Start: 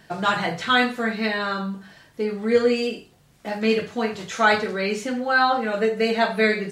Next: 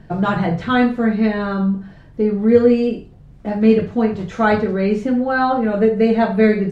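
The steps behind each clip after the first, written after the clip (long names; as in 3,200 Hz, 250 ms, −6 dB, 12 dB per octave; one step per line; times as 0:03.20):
spectral tilt −4.5 dB per octave
level +1 dB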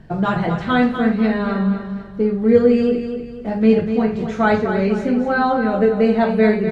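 repeating echo 246 ms, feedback 40%, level −8.5 dB
level −1 dB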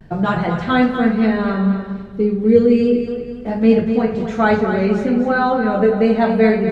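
pitch vibrato 0.33 Hz 29 cents
gain on a spectral selection 0:01.96–0:03.07, 520–2,100 Hz −8 dB
delay with a low-pass on its return 99 ms, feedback 69%, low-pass 1,600 Hz, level −13.5 dB
level +1 dB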